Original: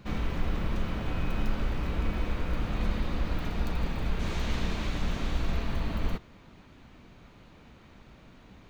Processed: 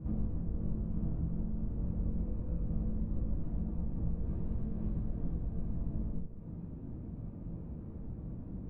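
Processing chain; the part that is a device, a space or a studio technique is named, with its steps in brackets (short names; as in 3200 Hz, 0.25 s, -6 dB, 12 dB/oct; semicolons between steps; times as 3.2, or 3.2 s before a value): television next door (compressor 5:1, threshold -42 dBFS, peak gain reduction 19 dB; LPF 380 Hz 12 dB/oct; reverb RT60 0.65 s, pre-delay 3 ms, DRR -6 dB); gain +2.5 dB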